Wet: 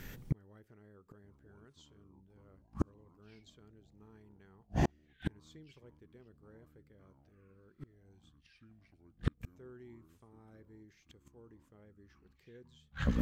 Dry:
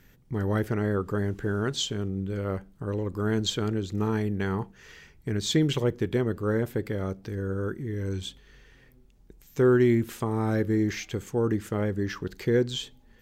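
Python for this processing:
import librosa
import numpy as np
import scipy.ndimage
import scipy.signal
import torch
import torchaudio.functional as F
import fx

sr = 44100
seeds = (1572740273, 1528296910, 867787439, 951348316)

y = fx.echo_pitch(x, sr, ms=768, semitones=-6, count=3, db_per_echo=-6.0)
y = fx.gate_flip(y, sr, shuts_db=-27.0, range_db=-42)
y = F.gain(torch.from_numpy(y), 9.0).numpy()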